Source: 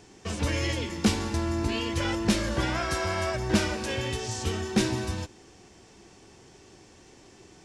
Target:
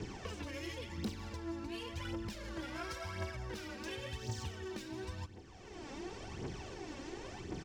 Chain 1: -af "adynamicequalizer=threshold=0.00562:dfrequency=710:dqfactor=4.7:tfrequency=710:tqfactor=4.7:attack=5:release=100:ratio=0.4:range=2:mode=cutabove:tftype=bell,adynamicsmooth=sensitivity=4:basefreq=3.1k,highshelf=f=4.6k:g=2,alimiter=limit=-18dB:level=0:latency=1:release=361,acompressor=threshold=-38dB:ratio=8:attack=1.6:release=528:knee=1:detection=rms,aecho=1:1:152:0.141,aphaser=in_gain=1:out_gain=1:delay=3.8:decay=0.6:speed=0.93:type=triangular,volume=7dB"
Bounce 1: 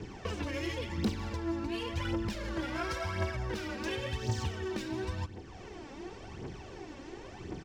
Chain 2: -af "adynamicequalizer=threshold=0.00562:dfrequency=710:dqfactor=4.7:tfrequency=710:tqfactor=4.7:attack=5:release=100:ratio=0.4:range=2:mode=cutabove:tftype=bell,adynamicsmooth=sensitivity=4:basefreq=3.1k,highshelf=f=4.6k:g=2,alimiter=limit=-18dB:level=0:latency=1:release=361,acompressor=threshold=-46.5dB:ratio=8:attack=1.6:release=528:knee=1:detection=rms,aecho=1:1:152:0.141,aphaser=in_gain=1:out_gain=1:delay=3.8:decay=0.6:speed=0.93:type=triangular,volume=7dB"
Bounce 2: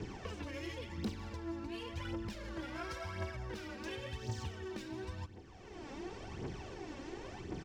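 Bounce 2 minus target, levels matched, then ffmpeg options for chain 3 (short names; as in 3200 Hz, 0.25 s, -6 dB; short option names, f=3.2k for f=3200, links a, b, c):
8000 Hz band -4.0 dB
-af "adynamicequalizer=threshold=0.00562:dfrequency=710:dqfactor=4.7:tfrequency=710:tqfactor=4.7:attack=5:release=100:ratio=0.4:range=2:mode=cutabove:tftype=bell,adynamicsmooth=sensitivity=4:basefreq=3.1k,highshelf=f=4.6k:g=9,alimiter=limit=-18dB:level=0:latency=1:release=361,acompressor=threshold=-46.5dB:ratio=8:attack=1.6:release=528:knee=1:detection=rms,aecho=1:1:152:0.141,aphaser=in_gain=1:out_gain=1:delay=3.8:decay=0.6:speed=0.93:type=triangular,volume=7dB"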